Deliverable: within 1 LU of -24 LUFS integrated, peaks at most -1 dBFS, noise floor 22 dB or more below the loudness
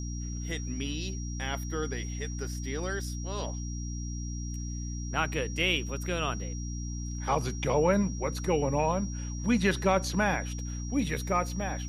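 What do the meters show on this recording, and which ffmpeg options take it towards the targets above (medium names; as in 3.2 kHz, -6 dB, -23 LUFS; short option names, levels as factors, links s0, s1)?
hum 60 Hz; highest harmonic 300 Hz; hum level -33 dBFS; steady tone 5.7 kHz; tone level -44 dBFS; loudness -31.0 LUFS; peak level -13.0 dBFS; loudness target -24.0 LUFS
-> -af "bandreject=f=60:t=h:w=4,bandreject=f=120:t=h:w=4,bandreject=f=180:t=h:w=4,bandreject=f=240:t=h:w=4,bandreject=f=300:t=h:w=4"
-af "bandreject=f=5700:w=30"
-af "volume=2.24"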